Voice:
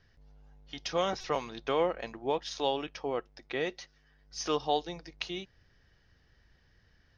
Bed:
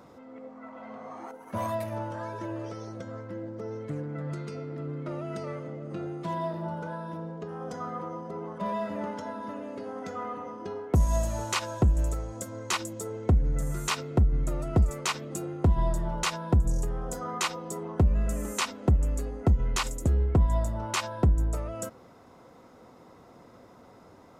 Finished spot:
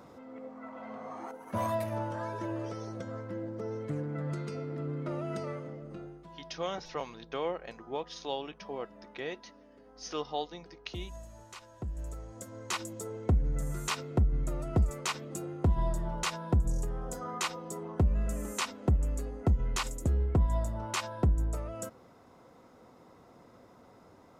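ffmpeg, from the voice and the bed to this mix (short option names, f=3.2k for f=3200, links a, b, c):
-filter_complex "[0:a]adelay=5650,volume=-5.5dB[a];[1:a]volume=15dB,afade=t=out:st=5.34:d=0.95:silence=0.112202,afade=t=in:st=11.73:d=1.19:silence=0.16788[b];[a][b]amix=inputs=2:normalize=0"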